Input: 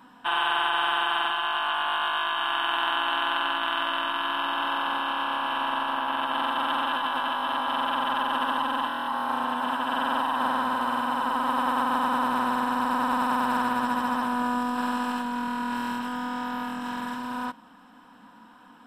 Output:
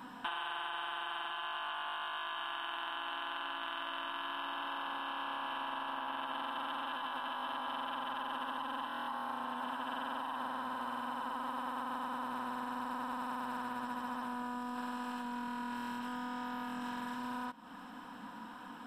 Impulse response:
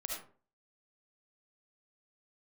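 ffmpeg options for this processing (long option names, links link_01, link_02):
-af "acompressor=threshold=-41dB:ratio=6,volume=3dB"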